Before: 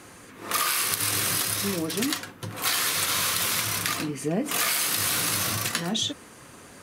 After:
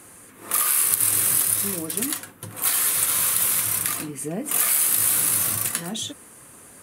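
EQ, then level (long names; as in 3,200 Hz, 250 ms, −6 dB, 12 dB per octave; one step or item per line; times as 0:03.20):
high shelf with overshoot 7,200 Hz +9.5 dB, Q 1.5
−3.0 dB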